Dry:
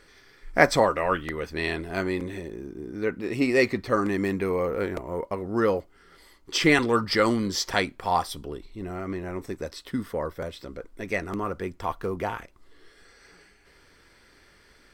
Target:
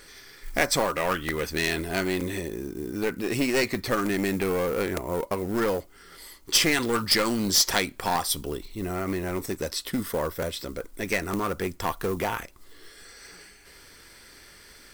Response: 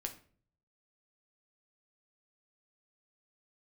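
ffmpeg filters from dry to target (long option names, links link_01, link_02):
-af "acompressor=threshold=-26dB:ratio=2.5,aeval=exprs='clip(val(0),-1,0.0398)':channel_layout=same,acrusher=bits=8:mode=log:mix=0:aa=0.000001,crystalizer=i=2.5:c=0,volume=3.5dB"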